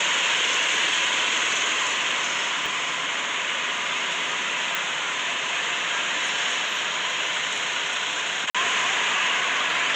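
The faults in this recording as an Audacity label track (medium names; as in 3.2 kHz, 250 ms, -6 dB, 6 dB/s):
2.660000	2.660000	pop
4.750000	4.750000	pop
8.500000	8.550000	dropout 46 ms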